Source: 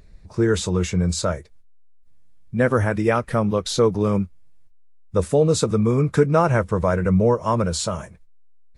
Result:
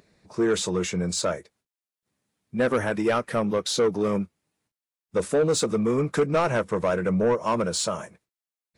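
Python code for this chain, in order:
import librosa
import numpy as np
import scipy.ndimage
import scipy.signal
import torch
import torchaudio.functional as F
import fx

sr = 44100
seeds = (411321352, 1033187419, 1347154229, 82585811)

y = scipy.signal.sosfilt(scipy.signal.butter(2, 220.0, 'highpass', fs=sr, output='sos'), x)
y = 10.0 ** (-15.5 / 20.0) * np.tanh(y / 10.0 ** (-15.5 / 20.0))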